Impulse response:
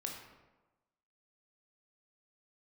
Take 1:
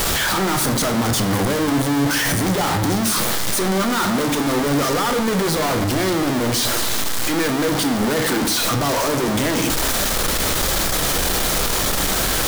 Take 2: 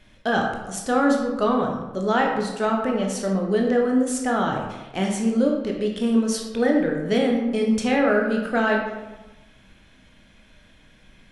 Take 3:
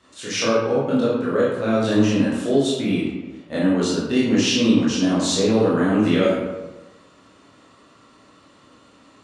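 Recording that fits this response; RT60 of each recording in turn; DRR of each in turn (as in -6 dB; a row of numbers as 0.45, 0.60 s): 2; 1.1, 1.2, 1.2 s; 7.0, 0.0, -8.0 dB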